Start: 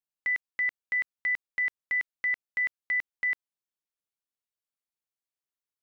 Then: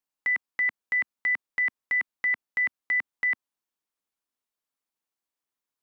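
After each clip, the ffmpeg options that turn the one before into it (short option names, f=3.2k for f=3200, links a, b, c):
-filter_complex "[0:a]acrossover=split=2700[a][b];[b]acompressor=threshold=-43dB:ratio=4:attack=1:release=60[c];[a][c]amix=inputs=2:normalize=0,equalizer=f=125:t=o:w=1:g=-6,equalizer=f=250:t=o:w=1:g=6,equalizer=f=1k:t=o:w=1:g=5,volume=2.5dB"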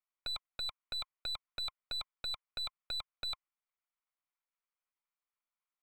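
-filter_complex "[0:a]asplit=3[a][b][c];[a]bandpass=f=530:t=q:w=8,volume=0dB[d];[b]bandpass=f=1.84k:t=q:w=8,volume=-6dB[e];[c]bandpass=f=2.48k:t=q:w=8,volume=-9dB[f];[d][e][f]amix=inputs=3:normalize=0,aeval=exprs='abs(val(0))':c=same,acrossover=split=550 2800:gain=0.0708 1 0.0891[g][h][i];[g][h][i]amix=inputs=3:normalize=0,volume=15.5dB"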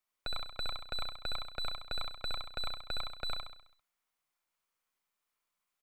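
-filter_complex "[0:a]acrossover=split=2100[a][b];[b]alimiter=level_in=20dB:limit=-24dB:level=0:latency=1,volume=-20dB[c];[a][c]amix=inputs=2:normalize=0,aecho=1:1:66|132|198|264|330|396|462:0.631|0.322|0.164|0.0837|0.0427|0.0218|0.0111,volume=6.5dB"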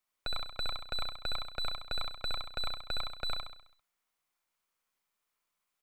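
-af "aeval=exprs='0.0708*(cos(1*acos(clip(val(0)/0.0708,-1,1)))-cos(1*PI/2))+0.001*(cos(6*acos(clip(val(0)/0.0708,-1,1)))-cos(6*PI/2))':c=same,volume=1.5dB"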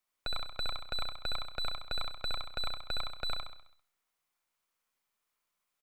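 -af "aecho=1:1:92|184|276:0.0841|0.0328|0.0128"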